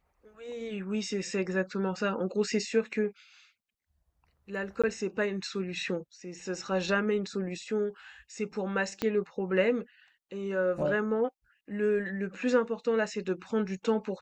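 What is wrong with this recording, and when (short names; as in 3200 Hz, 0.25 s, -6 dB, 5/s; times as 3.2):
4.82–4.84 gap 16 ms
9.02 pop -15 dBFS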